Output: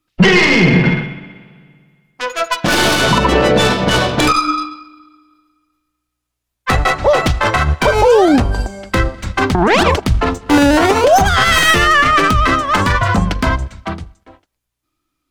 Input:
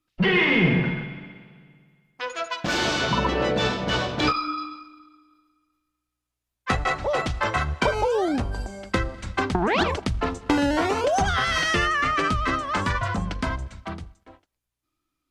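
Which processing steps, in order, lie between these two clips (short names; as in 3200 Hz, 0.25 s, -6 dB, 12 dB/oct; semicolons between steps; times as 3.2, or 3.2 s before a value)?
tracing distortion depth 0.1 ms; maximiser +16 dB; upward expander 1.5:1, over -23 dBFS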